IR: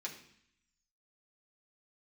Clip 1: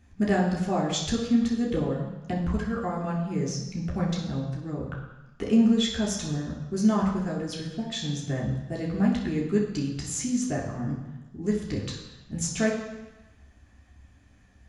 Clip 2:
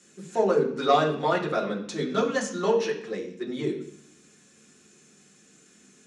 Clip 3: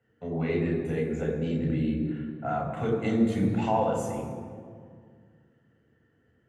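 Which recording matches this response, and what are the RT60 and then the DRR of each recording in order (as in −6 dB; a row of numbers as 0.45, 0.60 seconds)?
2; 1.0, 0.65, 2.0 seconds; −3.0, −3.0, −0.5 decibels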